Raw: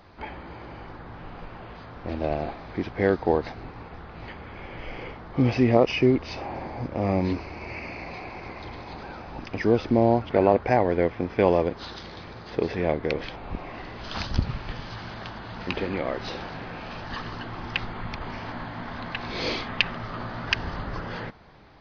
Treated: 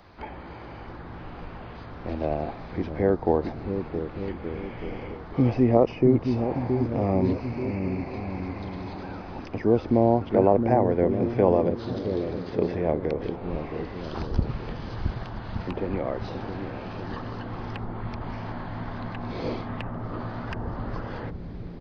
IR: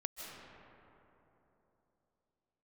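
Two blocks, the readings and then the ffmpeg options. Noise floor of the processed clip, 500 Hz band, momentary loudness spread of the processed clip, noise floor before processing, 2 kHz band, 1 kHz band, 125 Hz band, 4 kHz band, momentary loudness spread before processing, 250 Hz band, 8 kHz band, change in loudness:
-40 dBFS, +0.5 dB, 16 LU, -42 dBFS, -8.5 dB, -1.0 dB, +2.0 dB, -12.0 dB, 19 LU, +2.0 dB, no reading, 0.0 dB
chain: -filter_complex "[0:a]acrossover=split=480|1200[s0][s1][s2];[s0]aecho=1:1:670|1172|1549|1832|2044:0.631|0.398|0.251|0.158|0.1[s3];[s2]acompressor=threshold=0.00447:ratio=6[s4];[s3][s1][s4]amix=inputs=3:normalize=0"

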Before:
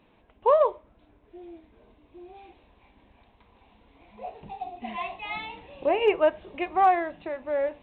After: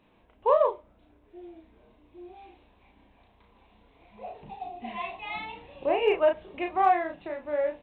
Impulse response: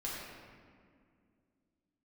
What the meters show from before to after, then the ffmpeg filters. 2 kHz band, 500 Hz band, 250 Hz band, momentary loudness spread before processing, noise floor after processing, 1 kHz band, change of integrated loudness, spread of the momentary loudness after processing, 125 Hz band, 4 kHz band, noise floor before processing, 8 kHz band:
-1.5 dB, -1.5 dB, -2.0 dB, 18 LU, -63 dBFS, -2.0 dB, -1.5 dB, 19 LU, -1.5 dB, -2.0 dB, -62 dBFS, no reading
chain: -filter_complex "[0:a]asplit=2[s0][s1];[s1]adelay=34,volume=0.631[s2];[s0][s2]amix=inputs=2:normalize=0,volume=0.708"

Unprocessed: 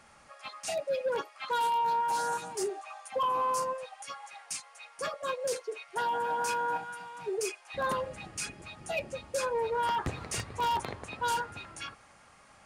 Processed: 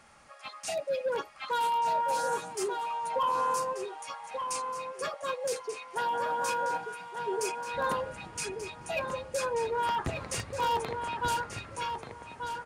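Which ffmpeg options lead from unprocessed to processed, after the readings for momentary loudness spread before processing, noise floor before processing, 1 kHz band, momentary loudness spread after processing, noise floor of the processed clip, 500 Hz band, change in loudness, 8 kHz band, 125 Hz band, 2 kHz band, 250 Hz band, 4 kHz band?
13 LU, -58 dBFS, +1.0 dB, 10 LU, -49 dBFS, +1.0 dB, +0.5 dB, +0.5 dB, +1.0 dB, +1.0 dB, +1.0 dB, +0.5 dB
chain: -filter_complex "[0:a]asplit=2[s0][s1];[s1]adelay=1185,lowpass=f=4000:p=1,volume=0.501,asplit=2[s2][s3];[s3]adelay=1185,lowpass=f=4000:p=1,volume=0.22,asplit=2[s4][s5];[s5]adelay=1185,lowpass=f=4000:p=1,volume=0.22[s6];[s0][s2][s4][s6]amix=inputs=4:normalize=0"

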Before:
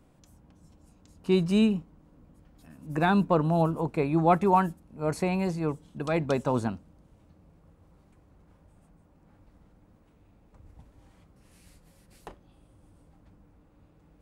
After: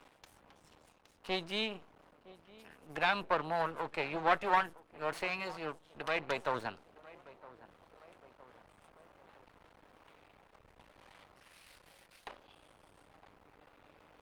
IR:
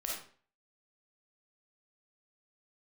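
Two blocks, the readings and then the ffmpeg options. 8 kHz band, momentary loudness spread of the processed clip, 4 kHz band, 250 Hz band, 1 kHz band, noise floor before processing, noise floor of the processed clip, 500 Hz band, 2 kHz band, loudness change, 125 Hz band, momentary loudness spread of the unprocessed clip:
-9.0 dB, 21 LU, +1.5 dB, -19.0 dB, -5.5 dB, -61 dBFS, -67 dBFS, -9.5 dB, +1.0 dB, -8.5 dB, -21.0 dB, 12 LU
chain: -filter_complex "[0:a]asplit=2[s0][s1];[s1]acompressor=threshold=0.0158:ratio=6,volume=0.944[s2];[s0][s2]amix=inputs=2:normalize=0,highshelf=f=2100:g=11.5,asplit=2[s3][s4];[s4]adelay=963,lowpass=f=1400:p=1,volume=0.1,asplit=2[s5][s6];[s6]adelay=963,lowpass=f=1400:p=1,volume=0.45,asplit=2[s7][s8];[s8]adelay=963,lowpass=f=1400:p=1,volume=0.45[s9];[s3][s5][s7][s9]amix=inputs=4:normalize=0,aeval=exprs='max(val(0),0)':c=same,areverse,acompressor=mode=upward:threshold=0.0141:ratio=2.5,areverse,acrossover=split=460 4200:gain=0.178 1 0.158[s10][s11][s12];[s10][s11][s12]amix=inputs=3:normalize=0,volume=0.668" -ar 48000 -c:a libopus -b:a 48k

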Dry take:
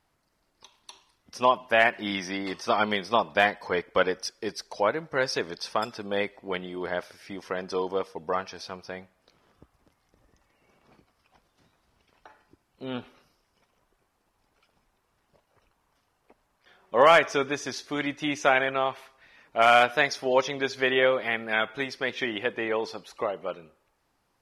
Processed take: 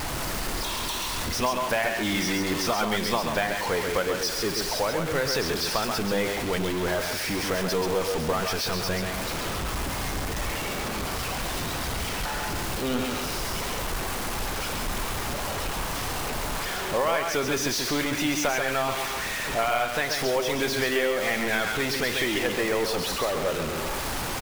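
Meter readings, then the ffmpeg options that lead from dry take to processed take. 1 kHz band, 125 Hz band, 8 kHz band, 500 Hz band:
-1.0 dB, +10.5 dB, +13.5 dB, 0.0 dB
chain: -filter_complex "[0:a]aeval=exprs='val(0)+0.5*0.0668*sgn(val(0))':c=same,acompressor=threshold=0.0891:ratio=6,acrusher=bits=4:mode=log:mix=0:aa=0.000001,lowshelf=f=67:g=6.5,asplit=2[s0][s1];[s1]aecho=0:1:135:0.531[s2];[s0][s2]amix=inputs=2:normalize=0,volume=0.841"

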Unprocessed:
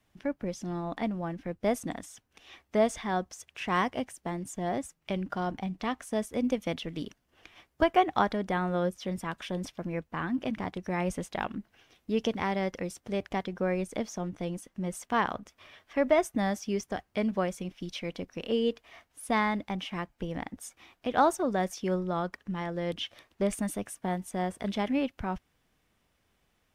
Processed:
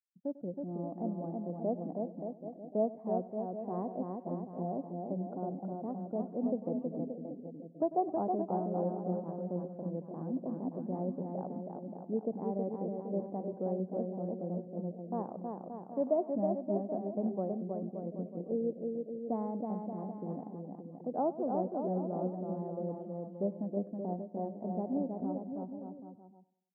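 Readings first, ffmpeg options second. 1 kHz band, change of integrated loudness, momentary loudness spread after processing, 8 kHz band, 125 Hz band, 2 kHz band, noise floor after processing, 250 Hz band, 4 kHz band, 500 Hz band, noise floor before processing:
-8.0 dB, -5.0 dB, 8 LU, under -35 dB, -3.5 dB, under -35 dB, -52 dBFS, -3.5 dB, under -40 dB, -3.5 dB, -74 dBFS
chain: -filter_complex "[0:a]agate=range=0.0224:threshold=0.00447:ratio=3:detection=peak,asplit=2[s0][s1];[s1]aecho=0:1:320|576|780.8|944.6|1076:0.631|0.398|0.251|0.158|0.1[s2];[s0][s2]amix=inputs=2:normalize=0,afftfilt=real='re*gte(hypot(re,im),0.00794)':imag='im*gte(hypot(re,im),0.00794)':win_size=1024:overlap=0.75,asuperpass=centerf=330:order=8:qfactor=0.54,asplit=2[s3][s4];[s4]aecho=0:1:97|194|291|388:0.126|0.0567|0.0255|0.0115[s5];[s3][s5]amix=inputs=2:normalize=0,volume=0.531"

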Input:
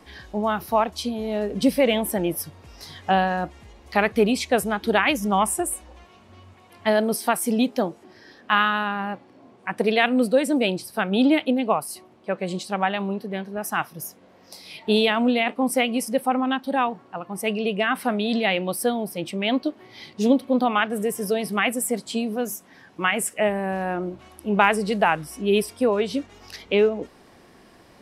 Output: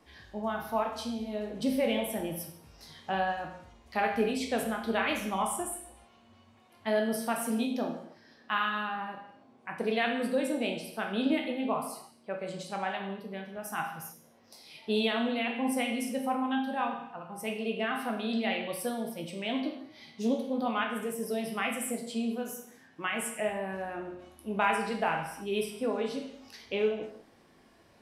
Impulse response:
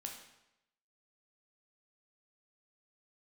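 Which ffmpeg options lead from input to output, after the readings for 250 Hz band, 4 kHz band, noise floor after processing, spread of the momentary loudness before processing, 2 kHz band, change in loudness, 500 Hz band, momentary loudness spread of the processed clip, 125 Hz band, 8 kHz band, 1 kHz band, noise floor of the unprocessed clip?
-9.0 dB, -9.0 dB, -61 dBFS, 13 LU, -9.0 dB, -9.0 dB, -9.5 dB, 14 LU, -11.0 dB, -9.5 dB, -8.5 dB, -52 dBFS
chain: -filter_complex "[1:a]atrim=start_sample=2205,afade=t=out:st=0.37:d=0.01,atrim=end_sample=16758[s0];[0:a][s0]afir=irnorm=-1:irlink=0,volume=0.473"

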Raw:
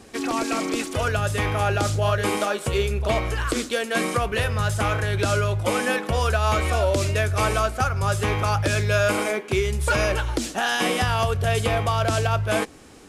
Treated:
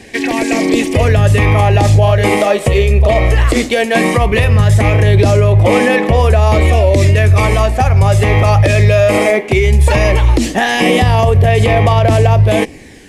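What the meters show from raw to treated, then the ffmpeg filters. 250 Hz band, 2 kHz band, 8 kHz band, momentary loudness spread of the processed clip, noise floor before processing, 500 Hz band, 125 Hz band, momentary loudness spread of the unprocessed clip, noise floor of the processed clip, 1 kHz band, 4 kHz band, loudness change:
+13.0 dB, +9.0 dB, +5.0 dB, 3 LU, -40 dBFS, +12.0 dB, +15.0 dB, 3 LU, -26 dBFS, +9.0 dB, +7.5 dB, +12.0 dB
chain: -filter_complex "[0:a]acrossover=split=1200[s0][s1];[s0]dynaudnorm=f=210:g=7:m=3.35[s2];[s1]highpass=f=1900:t=q:w=3.5[s3];[s2][s3]amix=inputs=2:normalize=0,aphaser=in_gain=1:out_gain=1:delay=1.6:decay=0.3:speed=0.17:type=sinusoidal,alimiter=level_in=2.37:limit=0.891:release=50:level=0:latency=1,volume=0.891"

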